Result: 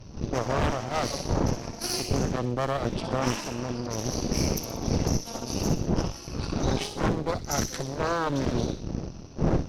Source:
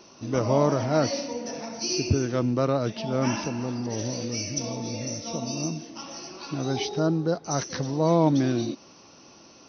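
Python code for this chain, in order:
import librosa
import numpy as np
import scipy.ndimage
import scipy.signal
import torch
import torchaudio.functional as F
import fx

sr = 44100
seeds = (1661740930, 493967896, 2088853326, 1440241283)

p1 = np.minimum(x, 2.0 * 10.0 ** (-21.5 / 20.0) - x)
p2 = fx.dmg_wind(p1, sr, seeds[0], corner_hz=170.0, level_db=-26.0)
p3 = fx.cheby_harmonics(p2, sr, harmonics=(8,), levels_db=(-9,), full_scale_db=-6.0)
p4 = fx.rider(p3, sr, range_db=3, speed_s=0.5)
p5 = p4 + fx.echo_wet_highpass(p4, sr, ms=62, feedback_pct=47, hz=3200.0, wet_db=-6.0, dry=0)
y = F.gain(torch.from_numpy(p5), -7.5).numpy()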